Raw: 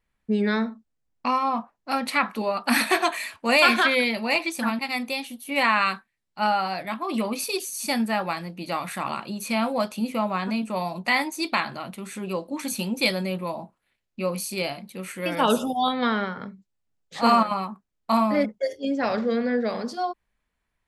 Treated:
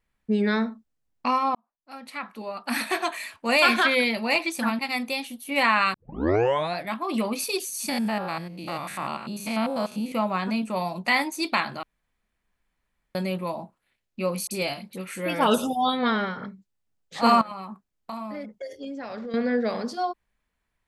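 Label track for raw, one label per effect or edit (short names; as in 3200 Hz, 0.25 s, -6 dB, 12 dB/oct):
1.550000	4.030000	fade in linear
5.940000	5.940000	tape start 0.84 s
7.890000	10.120000	stepped spectrum every 0.1 s
11.830000	13.150000	room tone
14.470000	16.460000	dispersion highs, late by 41 ms, half as late at 2100 Hz
17.410000	19.340000	compressor 5:1, threshold -33 dBFS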